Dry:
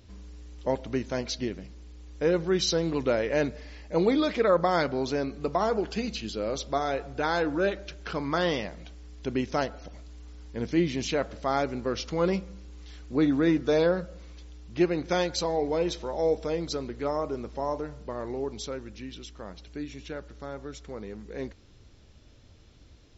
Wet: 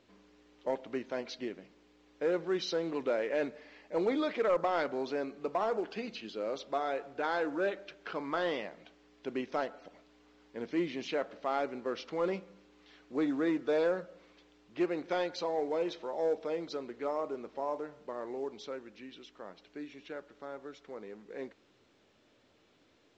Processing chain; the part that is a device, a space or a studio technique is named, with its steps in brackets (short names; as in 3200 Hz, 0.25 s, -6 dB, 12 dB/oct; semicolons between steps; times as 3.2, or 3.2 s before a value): telephone (BPF 300–3200 Hz; soft clip -16.5 dBFS, distortion -20 dB; gain -4 dB; µ-law 128 kbps 16000 Hz)